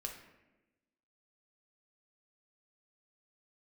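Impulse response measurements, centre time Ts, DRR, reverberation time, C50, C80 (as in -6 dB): 28 ms, 1.5 dB, 1.1 s, 6.5 dB, 9.0 dB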